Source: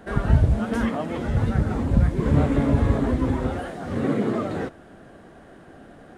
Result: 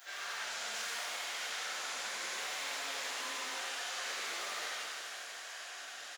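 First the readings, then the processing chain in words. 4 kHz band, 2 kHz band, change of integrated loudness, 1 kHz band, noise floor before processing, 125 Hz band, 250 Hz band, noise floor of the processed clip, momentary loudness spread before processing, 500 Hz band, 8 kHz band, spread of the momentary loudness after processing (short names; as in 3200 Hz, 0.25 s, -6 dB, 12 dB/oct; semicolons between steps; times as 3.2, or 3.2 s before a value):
+8.0 dB, -1.5 dB, -15.0 dB, -10.0 dB, -48 dBFS, under -40 dB, -38.5 dB, -47 dBFS, 9 LU, -21.5 dB, n/a, 6 LU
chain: self-modulated delay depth 0.42 ms; high shelf 2400 Hz +8 dB; on a send: echo 84 ms -5.5 dB; on the sum: downsampling 16000 Hz; flange 1.1 Hz, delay 5.7 ms, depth 6.9 ms, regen +40%; HPF 700 Hz 12 dB/oct; hard clip -28.5 dBFS, distortion -19 dB; differentiator; compressor 6:1, threshold -58 dBFS, peak gain reduction 15.5 dB; shimmer reverb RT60 2.5 s, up +7 st, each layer -8 dB, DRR -12 dB; gain +8 dB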